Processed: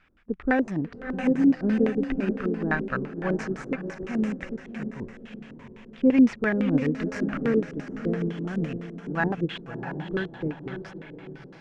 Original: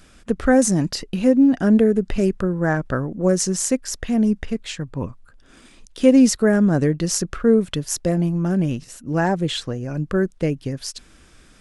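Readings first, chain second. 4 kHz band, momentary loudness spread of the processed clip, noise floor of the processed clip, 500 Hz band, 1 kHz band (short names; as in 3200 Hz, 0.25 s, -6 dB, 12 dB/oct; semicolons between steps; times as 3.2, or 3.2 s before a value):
under -10 dB, 18 LU, -47 dBFS, -8.5 dB, -5.5 dB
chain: resonant low shelf 720 Hz -6 dB, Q 1.5; diffused feedback echo 0.644 s, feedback 53%, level -5.5 dB; in parallel at -11.5 dB: decimation with a swept rate 11×, swing 60% 0.62 Hz; on the sum: LFO low-pass square 5.9 Hz 370–2300 Hz; upward expander 1.5:1, over -30 dBFS; gain -2.5 dB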